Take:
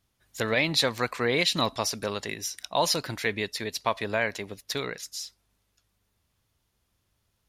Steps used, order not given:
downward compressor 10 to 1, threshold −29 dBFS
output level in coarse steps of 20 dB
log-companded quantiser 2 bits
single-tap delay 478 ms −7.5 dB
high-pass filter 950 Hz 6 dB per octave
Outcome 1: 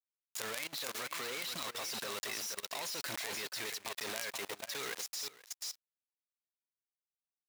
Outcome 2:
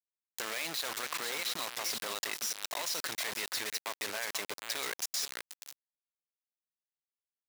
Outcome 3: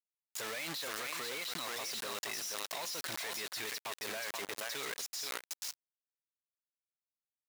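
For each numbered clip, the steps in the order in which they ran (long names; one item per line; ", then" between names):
log-companded quantiser, then high-pass filter, then downward compressor, then single-tap delay, then output level in coarse steps
output level in coarse steps, then single-tap delay, then log-companded quantiser, then downward compressor, then high-pass filter
downward compressor, then single-tap delay, then log-companded quantiser, then high-pass filter, then output level in coarse steps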